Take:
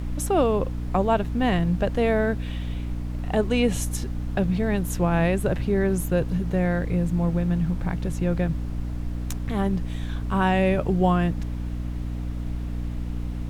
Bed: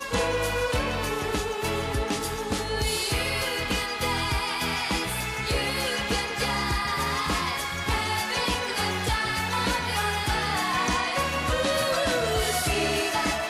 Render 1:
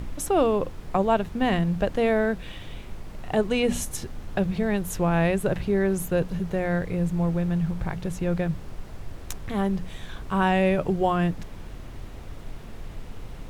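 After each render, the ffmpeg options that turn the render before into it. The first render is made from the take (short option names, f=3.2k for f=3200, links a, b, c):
-af "bandreject=f=60:t=h:w=6,bandreject=f=120:t=h:w=6,bandreject=f=180:t=h:w=6,bandreject=f=240:t=h:w=6,bandreject=f=300:t=h:w=6"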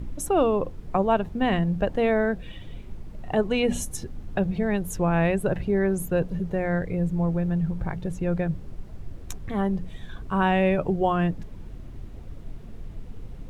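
-af "afftdn=nr=10:nf=-40"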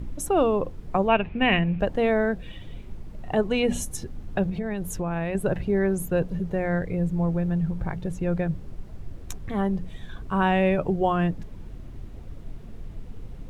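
-filter_complex "[0:a]asettb=1/sr,asplit=3[a][b][c];[a]atrim=end=1.084[d];[b]atrim=start=1.08:end=1.8,asetpts=PTS-STARTPTS,afade=t=in:d=0.004:c=qsin,afade=t=out:st=0.716:d=0.004:c=qsin,lowpass=f=2.5k:t=q:w=8[e];[c]atrim=start=1.796[f];[d][e]acrossfade=d=0.004:c1=hsin:c2=qsin[g];[g][f]acrossfade=d=0.004:c1=qsin:c2=hsin,asettb=1/sr,asplit=3[h][i][j];[h]atrim=end=4.494[k];[i]atrim=start=4.49:end=5.35,asetpts=PTS-STARTPTS,afade=t=in:d=0.004:c=qsin,afade=t=out:st=0.856:d=0.004:c=qsin,acompressor=threshold=-24dB:ratio=6:attack=3.2:release=140:knee=1:detection=peak[l];[j]atrim=start=5.346[m];[k][l]acrossfade=d=0.004:c1=hsin:c2=qsin[n];[n][m]acrossfade=d=0.004:c1=qsin:c2=hsin"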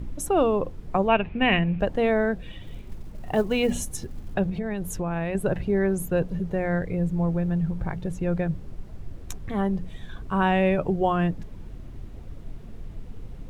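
-filter_complex "[0:a]asettb=1/sr,asplit=3[a][b][c];[a]atrim=end=2.634[d];[b]atrim=start=2.63:end=4.34,asetpts=PTS-STARTPTS,afade=t=in:d=0.004:c=qsin,afade=t=out:st=1.706:d=0.004:c=qsin,acrusher=bits=8:mode=log:mix=0:aa=0.000001[e];[c]atrim=start=4.336[f];[d][e]acrossfade=d=0.004:c1=hsin:c2=qsin[g];[g][f]acrossfade=d=0.004:c1=qsin:c2=hsin"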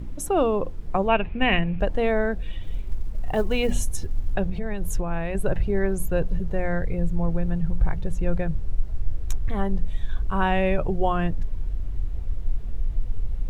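-af "asubboost=boost=5.5:cutoff=75"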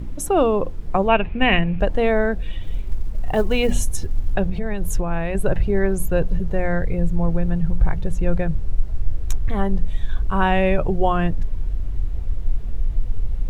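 -af "volume=4dB"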